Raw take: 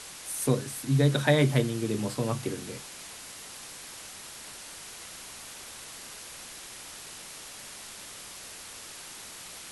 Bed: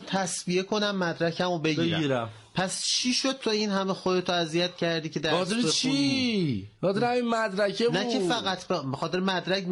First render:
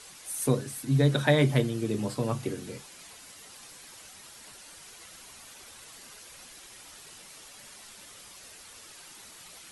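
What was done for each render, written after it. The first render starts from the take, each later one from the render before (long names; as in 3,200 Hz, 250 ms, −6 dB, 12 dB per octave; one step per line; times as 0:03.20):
broadband denoise 8 dB, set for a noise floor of −45 dBFS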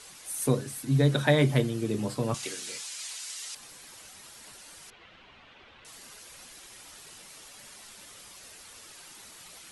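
0:02.34–0:03.55: meter weighting curve ITU-R 468
0:04.90–0:05.85: Chebyshev low-pass filter 3,100 Hz, order 3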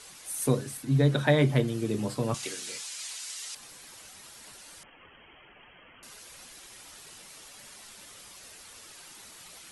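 0:00.77–0:01.68: high-shelf EQ 4,500 Hz −6 dB
0:04.83–0:06.03: voice inversion scrambler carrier 3,200 Hz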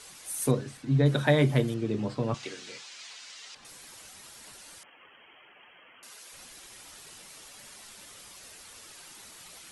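0:00.51–0:01.06: high-frequency loss of the air 93 metres
0:01.74–0:03.65: high-frequency loss of the air 130 metres
0:04.78–0:06.33: high-pass filter 480 Hz 6 dB per octave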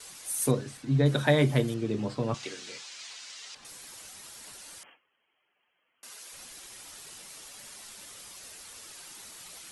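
bass and treble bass −1 dB, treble +3 dB
noise gate with hold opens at −42 dBFS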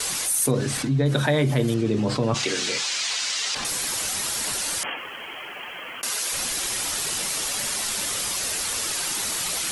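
envelope flattener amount 70%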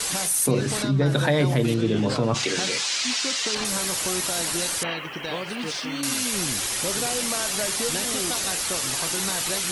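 mix in bed −6 dB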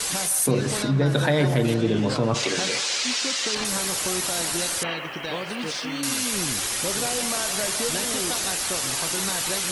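delay with a band-pass on its return 159 ms, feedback 64%, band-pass 980 Hz, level −9.5 dB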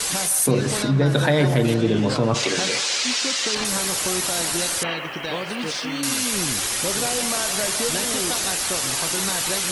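level +2.5 dB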